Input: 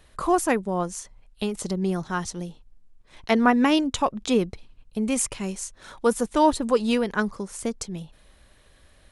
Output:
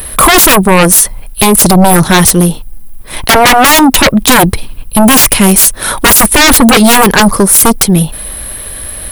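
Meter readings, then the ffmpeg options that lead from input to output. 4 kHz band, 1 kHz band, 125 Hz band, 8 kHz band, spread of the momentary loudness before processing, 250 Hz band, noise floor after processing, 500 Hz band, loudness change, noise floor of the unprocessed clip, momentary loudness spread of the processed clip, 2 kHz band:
+24.5 dB, +18.5 dB, +23.0 dB, +27.0 dB, 15 LU, +16.5 dB, -25 dBFS, +14.5 dB, +19.5 dB, -57 dBFS, 15 LU, +22.0 dB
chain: -af "aexciter=amount=11.4:drive=6.8:freq=9.7k,acontrast=64,aeval=exprs='1*sin(PI/2*8.91*val(0)/1)':c=same,volume=-1dB"

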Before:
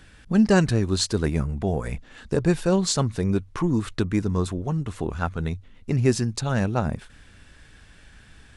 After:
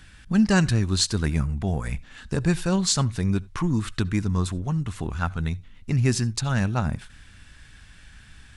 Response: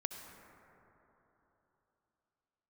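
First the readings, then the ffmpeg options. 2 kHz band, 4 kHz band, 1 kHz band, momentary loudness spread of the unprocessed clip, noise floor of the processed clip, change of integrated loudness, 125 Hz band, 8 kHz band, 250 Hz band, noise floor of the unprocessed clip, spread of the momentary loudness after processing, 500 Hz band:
+1.0 dB, +2.5 dB, -1.5 dB, 10 LU, -50 dBFS, -0.5 dB, +1.0 dB, +2.5 dB, -1.0 dB, -51 dBFS, 9 LU, -6.5 dB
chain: -filter_complex "[0:a]equalizer=f=460:t=o:w=1.6:g=-10,asplit=2[a][b];[1:a]atrim=start_sample=2205,afade=t=out:st=0.14:d=0.01,atrim=end_sample=6615[c];[b][c]afir=irnorm=-1:irlink=0,volume=-8dB[d];[a][d]amix=inputs=2:normalize=0"

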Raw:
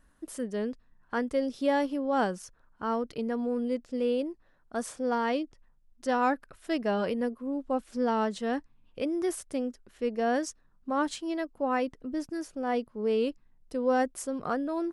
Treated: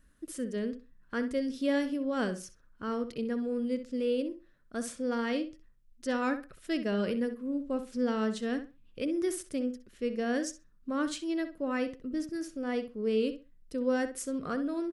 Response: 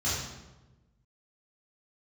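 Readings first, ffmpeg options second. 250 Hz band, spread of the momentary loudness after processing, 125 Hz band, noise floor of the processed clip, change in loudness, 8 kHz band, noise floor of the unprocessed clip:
0.0 dB, 9 LU, n/a, -62 dBFS, -2.0 dB, 0.0 dB, -64 dBFS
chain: -filter_complex "[0:a]equalizer=f=840:w=1.9:g=-14.5,asplit=2[a][b];[b]adelay=64,lowpass=f=3.4k:p=1,volume=-10dB,asplit=2[c][d];[d]adelay=64,lowpass=f=3.4k:p=1,volume=0.22,asplit=2[e][f];[f]adelay=64,lowpass=f=3.4k:p=1,volume=0.22[g];[a][c][e][g]amix=inputs=4:normalize=0"

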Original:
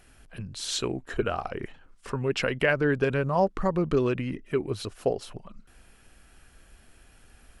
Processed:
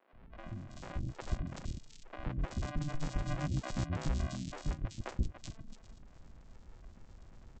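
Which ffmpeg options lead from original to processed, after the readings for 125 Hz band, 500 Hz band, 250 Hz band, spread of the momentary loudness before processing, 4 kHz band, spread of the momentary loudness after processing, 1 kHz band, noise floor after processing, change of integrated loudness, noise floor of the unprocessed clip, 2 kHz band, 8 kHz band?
-5.0 dB, -22.0 dB, -11.5 dB, 15 LU, -15.0 dB, 22 LU, -14.0 dB, -58 dBFS, -12.0 dB, -57 dBFS, -17.5 dB, -12.0 dB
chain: -filter_complex "[0:a]acompressor=threshold=-46dB:ratio=2,equalizer=f=500:t=o:w=1:g=7,equalizer=f=1k:t=o:w=1:g=-5,equalizer=f=2k:t=o:w=1:g=-12,equalizer=f=4k:t=o:w=1:g=-10,aresample=16000,acrusher=samples=36:mix=1:aa=0.000001,aresample=44100,acrossover=split=370|3000[a][b][c];[a]adelay=130[d];[c]adelay=380[e];[d][b][e]amix=inputs=3:normalize=0,volume=2dB"

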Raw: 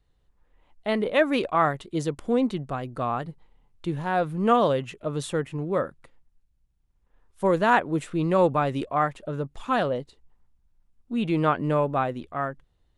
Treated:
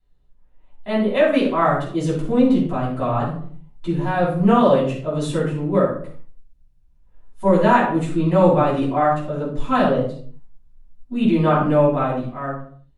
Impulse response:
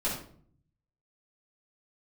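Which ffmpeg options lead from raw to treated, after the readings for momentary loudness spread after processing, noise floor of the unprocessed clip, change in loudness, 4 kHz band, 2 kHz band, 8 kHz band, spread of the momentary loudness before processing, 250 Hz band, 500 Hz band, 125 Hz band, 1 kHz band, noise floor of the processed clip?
13 LU, -68 dBFS, +6.5 dB, +3.0 dB, +2.5 dB, n/a, 11 LU, +8.5 dB, +6.5 dB, +8.0 dB, +4.5 dB, -54 dBFS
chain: -filter_complex "[0:a]dynaudnorm=f=250:g=9:m=6.5dB[a];[1:a]atrim=start_sample=2205,afade=t=out:st=0.45:d=0.01,atrim=end_sample=20286[b];[a][b]afir=irnorm=-1:irlink=0,volume=-8dB"

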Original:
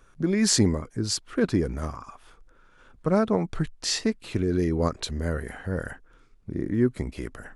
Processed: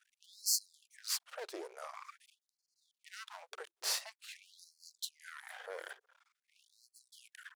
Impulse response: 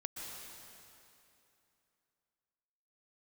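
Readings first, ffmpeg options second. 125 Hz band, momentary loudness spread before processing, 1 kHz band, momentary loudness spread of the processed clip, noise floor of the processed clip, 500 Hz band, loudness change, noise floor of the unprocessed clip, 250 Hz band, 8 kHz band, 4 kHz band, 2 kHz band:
under -40 dB, 12 LU, -14.5 dB, 22 LU, under -85 dBFS, -23.0 dB, -13.0 dB, -57 dBFS, -36.5 dB, -8.0 dB, -9.0 dB, -11.5 dB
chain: -filter_complex "[0:a]aeval=exprs='max(val(0),0)':c=same,acrossover=split=180|3000[a][b][c];[b]acompressor=threshold=-38dB:ratio=5[d];[a][d][c]amix=inputs=3:normalize=0,afftfilt=real='re*gte(b*sr/1024,340*pow(4200/340,0.5+0.5*sin(2*PI*0.47*pts/sr)))':imag='im*gte(b*sr/1024,340*pow(4200/340,0.5+0.5*sin(2*PI*0.47*pts/sr)))':win_size=1024:overlap=0.75,volume=-2.5dB"

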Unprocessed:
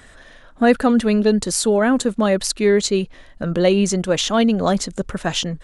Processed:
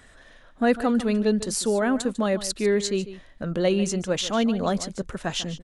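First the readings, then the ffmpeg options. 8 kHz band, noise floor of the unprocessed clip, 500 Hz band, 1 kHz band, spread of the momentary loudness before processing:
-6.5 dB, -46 dBFS, -6.5 dB, -6.5 dB, 7 LU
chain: -af "aecho=1:1:148:0.188,volume=-6.5dB"

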